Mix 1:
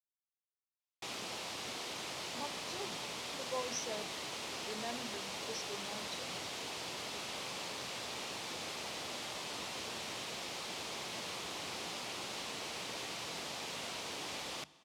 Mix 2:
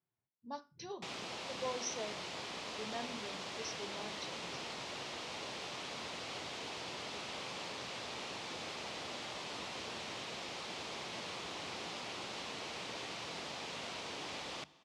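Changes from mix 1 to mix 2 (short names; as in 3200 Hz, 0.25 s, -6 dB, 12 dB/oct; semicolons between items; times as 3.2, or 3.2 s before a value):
speech: entry -1.90 s; background: add air absorption 70 m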